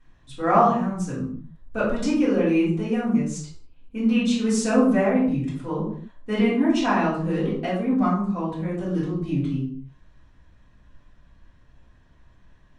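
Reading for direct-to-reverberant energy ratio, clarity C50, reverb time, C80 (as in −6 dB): −10.5 dB, 4.0 dB, non-exponential decay, 7.5 dB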